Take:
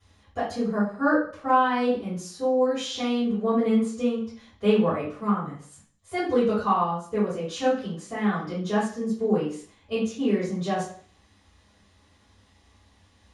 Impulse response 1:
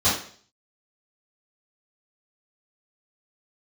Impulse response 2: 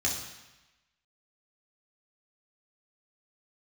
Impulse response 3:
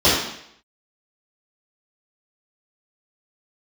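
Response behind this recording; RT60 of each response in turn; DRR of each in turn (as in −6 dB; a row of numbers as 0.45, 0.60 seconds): 1; 0.50, 1.0, 0.70 seconds; −13.5, −3.0, −13.0 decibels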